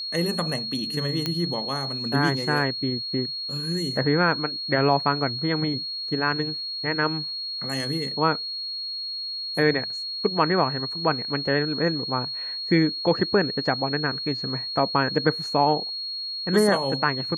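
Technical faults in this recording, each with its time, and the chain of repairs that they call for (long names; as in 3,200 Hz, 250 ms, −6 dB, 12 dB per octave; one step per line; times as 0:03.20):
whistle 4,300 Hz −29 dBFS
0:01.26: click −11 dBFS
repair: click removal
notch filter 4,300 Hz, Q 30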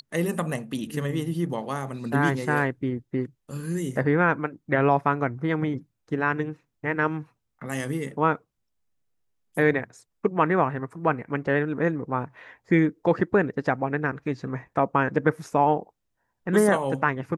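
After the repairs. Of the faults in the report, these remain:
none of them is left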